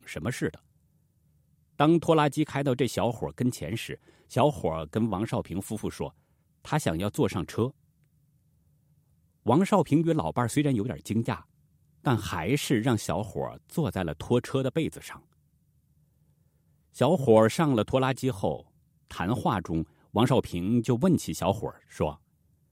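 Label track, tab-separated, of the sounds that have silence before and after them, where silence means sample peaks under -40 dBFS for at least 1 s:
1.790000	7.700000	sound
9.460000	15.170000	sound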